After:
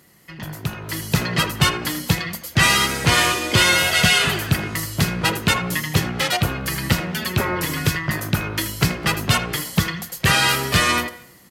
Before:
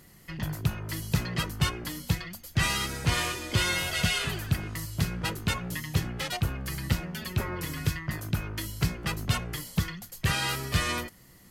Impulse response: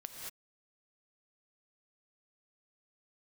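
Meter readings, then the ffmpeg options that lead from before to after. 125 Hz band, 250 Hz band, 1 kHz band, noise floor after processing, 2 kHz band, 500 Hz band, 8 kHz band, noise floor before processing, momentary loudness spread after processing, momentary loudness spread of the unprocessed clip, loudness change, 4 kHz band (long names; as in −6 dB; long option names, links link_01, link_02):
+6.5 dB, +9.5 dB, +12.5 dB, −45 dBFS, +12.5 dB, +12.0 dB, +11.5 dB, −54 dBFS, 10 LU, 8 LU, +11.0 dB, +12.0 dB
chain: -filter_complex "[0:a]asplit=2[link_01][link_02];[1:a]atrim=start_sample=2205,lowpass=4200[link_03];[link_02][link_03]afir=irnorm=-1:irlink=0,volume=-13.5dB[link_04];[link_01][link_04]amix=inputs=2:normalize=0,dynaudnorm=framelen=370:gausssize=5:maxgain=11.5dB,highpass=frequency=200:poles=1,asplit=2[link_05][link_06];[link_06]adelay=80,highpass=300,lowpass=3400,asoftclip=type=hard:threshold=-11.5dB,volume=-11dB[link_07];[link_05][link_07]amix=inputs=2:normalize=0,volume=2dB"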